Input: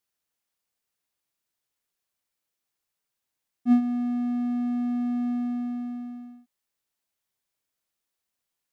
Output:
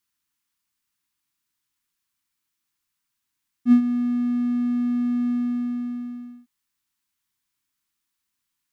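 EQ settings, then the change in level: band shelf 560 Hz -15 dB 1.1 oct; +4.0 dB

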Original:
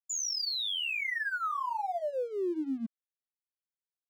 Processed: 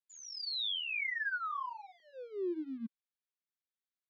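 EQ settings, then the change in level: Butterworth band-stop 650 Hz, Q 0.97; speaker cabinet 260–3700 Hz, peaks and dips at 280 Hz -9 dB, 450 Hz -5 dB, 890 Hz -6 dB, 1300 Hz -6 dB, 1900 Hz -5 dB, 2800 Hz -8 dB; +2.5 dB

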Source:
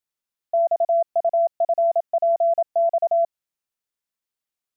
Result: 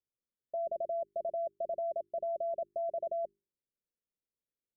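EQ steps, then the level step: steep low-pass 580 Hz 72 dB/oct; notches 50/100/150/200/250/300/350/400 Hz; 0.0 dB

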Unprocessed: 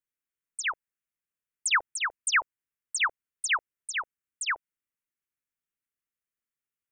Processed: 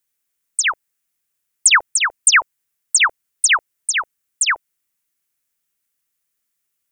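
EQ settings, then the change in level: high shelf 3800 Hz +10 dB; +9.0 dB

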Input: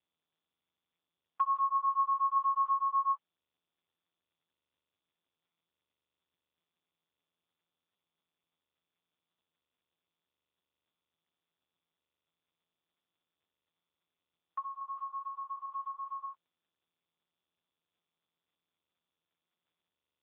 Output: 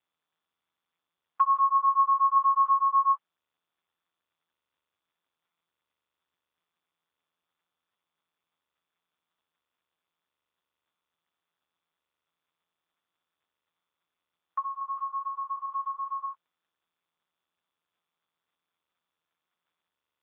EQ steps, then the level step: bell 1300 Hz +9.5 dB 2 oct; -2.0 dB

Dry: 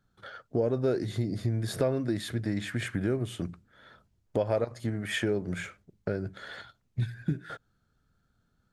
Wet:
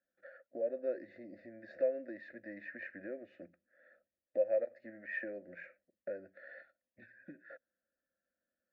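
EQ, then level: vowel filter e; LPF 4200 Hz 24 dB/oct; fixed phaser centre 650 Hz, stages 8; +3.0 dB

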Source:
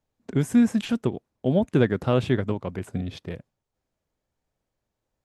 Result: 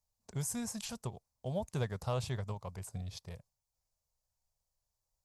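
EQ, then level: passive tone stack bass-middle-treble 10-0-10; band shelf 2200 Hz -13 dB; +3.0 dB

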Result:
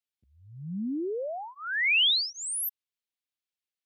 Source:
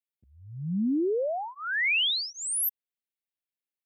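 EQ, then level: bell 3700 Hz +9 dB 2.1 oct; -5.5 dB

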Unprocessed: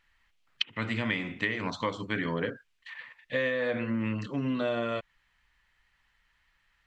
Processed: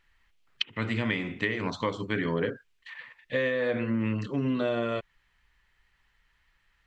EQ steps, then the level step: low shelf 180 Hz +4.5 dB; bell 400 Hz +5.5 dB 0.42 oct; 0.0 dB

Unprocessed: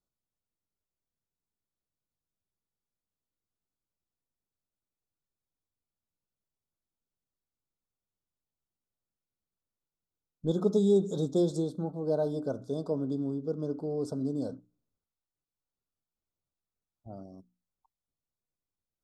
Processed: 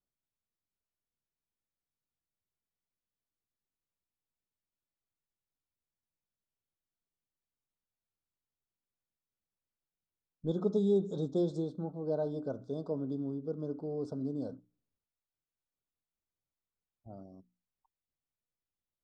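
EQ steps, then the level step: air absorption 120 m; -4.0 dB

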